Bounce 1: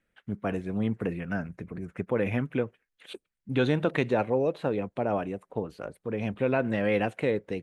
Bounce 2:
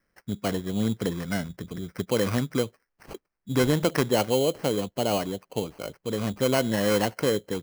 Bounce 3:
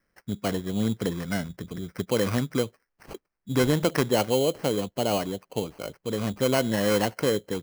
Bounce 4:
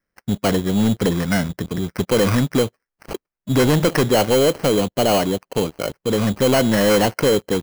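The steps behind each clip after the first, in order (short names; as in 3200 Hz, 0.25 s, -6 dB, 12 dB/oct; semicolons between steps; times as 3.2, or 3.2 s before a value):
sample-rate reducer 3600 Hz, jitter 0%; gain +2.5 dB
nothing audible
sample leveller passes 3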